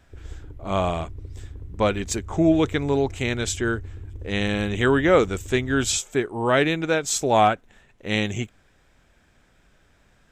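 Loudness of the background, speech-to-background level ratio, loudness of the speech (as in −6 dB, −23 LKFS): −39.5 LKFS, 16.5 dB, −23.0 LKFS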